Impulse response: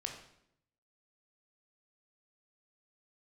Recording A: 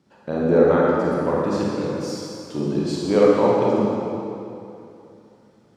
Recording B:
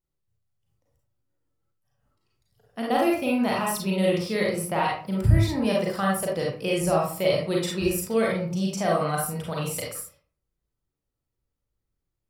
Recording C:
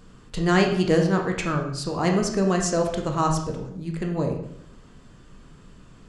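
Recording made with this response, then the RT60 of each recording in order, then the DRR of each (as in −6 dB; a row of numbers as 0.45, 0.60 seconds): C; 2.8, 0.45, 0.75 seconds; −5.5, −3.5, 2.0 decibels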